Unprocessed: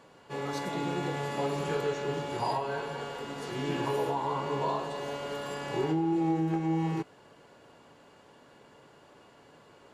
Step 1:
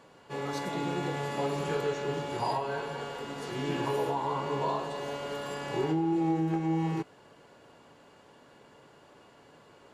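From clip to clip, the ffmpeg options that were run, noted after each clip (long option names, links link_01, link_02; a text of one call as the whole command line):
ffmpeg -i in.wav -af anull out.wav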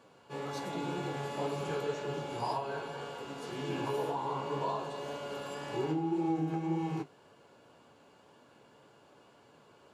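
ffmpeg -i in.wav -af "highpass=64,bandreject=frequency=1900:width=7.3,flanger=delay=8.5:depth=8.8:regen=-42:speed=1.9:shape=sinusoidal" out.wav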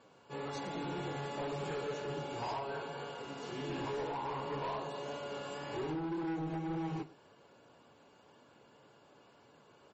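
ffmpeg -i in.wav -af "asoftclip=type=hard:threshold=-32.5dB,aecho=1:1:104:0.106,volume=-1.5dB" -ar 44100 -c:a libmp3lame -b:a 32k out.mp3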